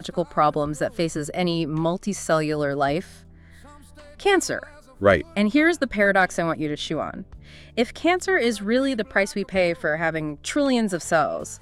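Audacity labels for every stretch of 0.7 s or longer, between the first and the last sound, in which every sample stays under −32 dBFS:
3.040000	4.200000	silence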